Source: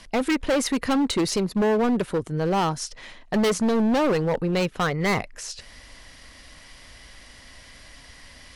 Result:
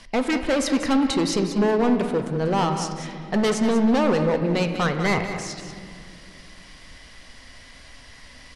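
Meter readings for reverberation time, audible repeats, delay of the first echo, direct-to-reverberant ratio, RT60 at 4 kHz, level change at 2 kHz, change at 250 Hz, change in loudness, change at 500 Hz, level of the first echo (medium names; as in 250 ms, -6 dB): 2.3 s, 1, 191 ms, 5.0 dB, 1.6 s, +1.5 dB, +2.0 dB, +1.5 dB, +1.0 dB, -10.0 dB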